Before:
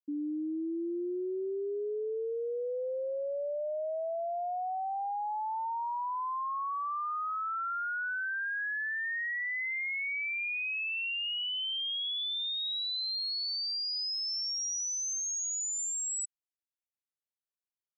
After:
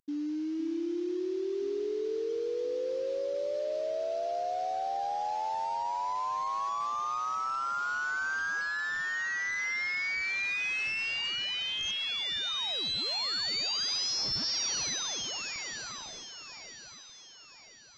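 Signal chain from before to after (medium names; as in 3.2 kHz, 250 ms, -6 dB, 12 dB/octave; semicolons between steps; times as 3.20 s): CVSD coder 32 kbps; echo whose repeats swap between lows and highs 512 ms, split 1.3 kHz, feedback 66%, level -7 dB; trim +1 dB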